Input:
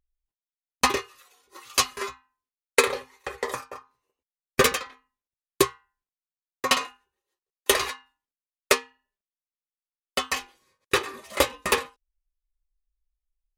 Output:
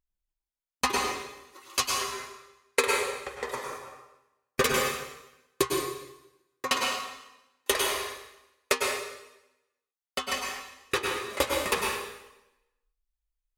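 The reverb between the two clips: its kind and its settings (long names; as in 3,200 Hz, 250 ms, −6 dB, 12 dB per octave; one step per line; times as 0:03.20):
dense smooth reverb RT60 0.93 s, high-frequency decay 0.95×, pre-delay 90 ms, DRR −0.5 dB
level −5.5 dB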